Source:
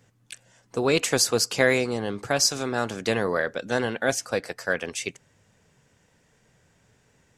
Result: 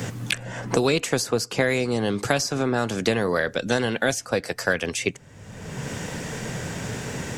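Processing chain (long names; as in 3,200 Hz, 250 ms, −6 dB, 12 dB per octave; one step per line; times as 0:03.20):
low-shelf EQ 300 Hz +6 dB
multiband upward and downward compressor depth 100%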